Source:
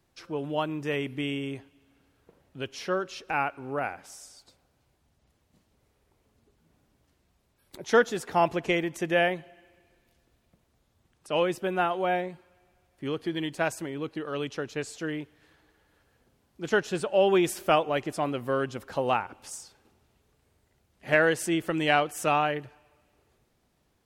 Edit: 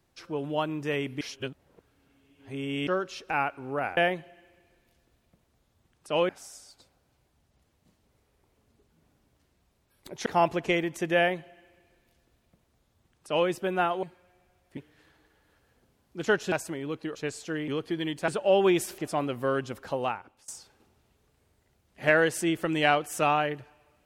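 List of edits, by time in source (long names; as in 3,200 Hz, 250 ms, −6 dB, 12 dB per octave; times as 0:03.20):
0:01.21–0:02.87: reverse
0:07.94–0:08.26: remove
0:09.17–0:11.49: duplicate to 0:03.97
0:12.03–0:12.30: remove
0:13.04–0:13.64: swap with 0:15.21–0:16.96
0:14.27–0:14.68: remove
0:17.66–0:18.03: remove
0:18.82–0:19.53: fade out, to −21 dB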